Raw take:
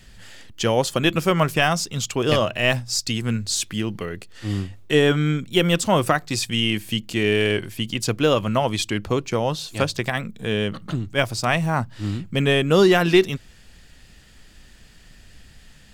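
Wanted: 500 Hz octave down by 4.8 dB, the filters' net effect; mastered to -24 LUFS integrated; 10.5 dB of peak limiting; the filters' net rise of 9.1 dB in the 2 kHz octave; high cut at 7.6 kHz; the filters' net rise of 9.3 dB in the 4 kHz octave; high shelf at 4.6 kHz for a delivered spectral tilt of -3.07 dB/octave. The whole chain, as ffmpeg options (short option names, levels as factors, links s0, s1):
-af "lowpass=7600,equalizer=f=500:t=o:g=-7,equalizer=f=2000:t=o:g=9,equalizer=f=4000:t=o:g=7.5,highshelf=f=4600:g=3.5,volume=0.668,alimiter=limit=0.282:level=0:latency=1"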